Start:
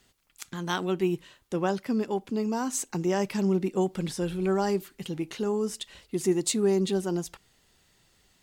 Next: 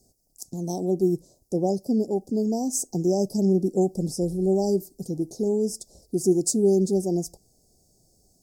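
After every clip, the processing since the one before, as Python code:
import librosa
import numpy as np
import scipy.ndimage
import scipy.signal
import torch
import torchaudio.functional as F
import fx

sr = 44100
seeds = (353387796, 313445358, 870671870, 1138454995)

y = scipy.signal.sosfilt(scipy.signal.cheby1(4, 1.0, [720.0, 5100.0], 'bandstop', fs=sr, output='sos'), x)
y = y * librosa.db_to_amplitude(4.5)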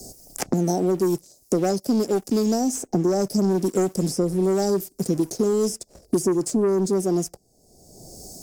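y = fx.low_shelf(x, sr, hz=190.0, db=-6.0)
y = fx.leveller(y, sr, passes=2)
y = fx.band_squash(y, sr, depth_pct=100)
y = y * librosa.db_to_amplitude(-2.5)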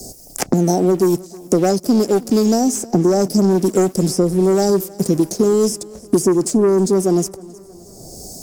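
y = fx.echo_feedback(x, sr, ms=315, feedback_pct=54, wet_db=-22)
y = y * librosa.db_to_amplitude(6.5)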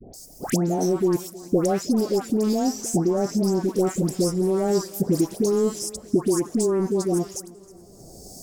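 y = fx.rider(x, sr, range_db=5, speed_s=0.5)
y = fx.dispersion(y, sr, late='highs', ms=140.0, hz=1300.0)
y = y * librosa.db_to_amplitude(-6.5)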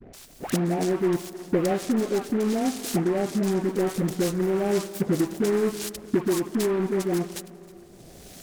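y = fx.rev_spring(x, sr, rt60_s=2.6, pass_ms=(58,), chirp_ms=75, drr_db=14.5)
y = fx.noise_mod_delay(y, sr, seeds[0], noise_hz=1200.0, depth_ms=0.053)
y = y * librosa.db_to_amplitude(-2.5)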